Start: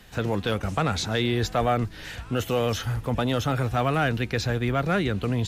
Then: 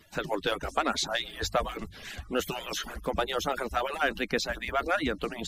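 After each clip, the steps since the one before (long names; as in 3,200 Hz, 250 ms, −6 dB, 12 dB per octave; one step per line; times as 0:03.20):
harmonic-percussive split with one part muted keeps percussive
mains-hum notches 50/100 Hz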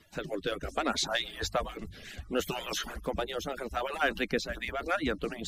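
reversed playback
upward compression, threshold −35 dBFS
reversed playback
rotating-speaker cabinet horn 0.65 Hz, later 5 Hz, at 0:04.05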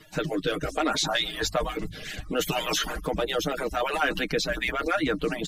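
in parallel at 0 dB: compressor whose output falls as the input rises −35 dBFS, ratio −1
on the sum: comb filter 6.5 ms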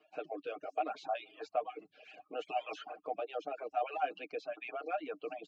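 reverb reduction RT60 0.76 s
formant filter a
loudspeaker in its box 260–6,400 Hz, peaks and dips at 290 Hz +6 dB, 440 Hz +4 dB, 1,100 Hz −9 dB, 3,600 Hz −8 dB, 5,700 Hz −5 dB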